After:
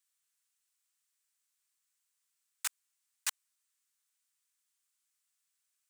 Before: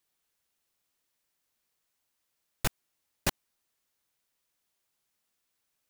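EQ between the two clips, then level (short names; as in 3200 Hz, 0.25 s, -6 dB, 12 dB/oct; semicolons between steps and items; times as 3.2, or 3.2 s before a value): HPF 1100 Hz 24 dB/oct; bell 8100 Hz +9 dB 0.79 oct; -5.5 dB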